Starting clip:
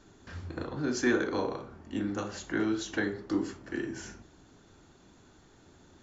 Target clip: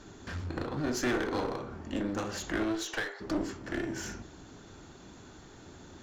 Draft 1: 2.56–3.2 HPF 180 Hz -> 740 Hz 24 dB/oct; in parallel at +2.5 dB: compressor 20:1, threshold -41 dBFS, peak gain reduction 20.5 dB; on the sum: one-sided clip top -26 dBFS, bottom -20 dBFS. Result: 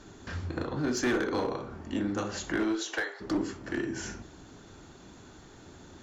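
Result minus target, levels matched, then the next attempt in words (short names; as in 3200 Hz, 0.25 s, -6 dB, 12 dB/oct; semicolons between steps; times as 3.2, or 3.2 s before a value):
one-sided clip: distortion -6 dB
2.56–3.2 HPF 180 Hz -> 740 Hz 24 dB/oct; in parallel at +2.5 dB: compressor 20:1, threshold -41 dBFS, peak gain reduction 20.5 dB; on the sum: one-sided clip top -36 dBFS, bottom -20 dBFS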